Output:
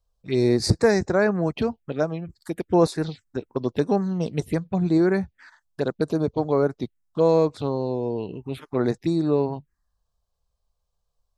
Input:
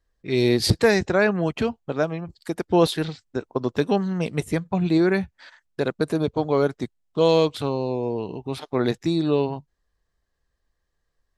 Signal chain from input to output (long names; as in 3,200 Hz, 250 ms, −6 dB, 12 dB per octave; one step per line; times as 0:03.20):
0:06.53–0:08.73: dynamic equaliser 6,700 Hz, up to −6 dB, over −44 dBFS, Q 0.7
phaser swept by the level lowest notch 310 Hz, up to 3,100 Hz, full sweep at −19 dBFS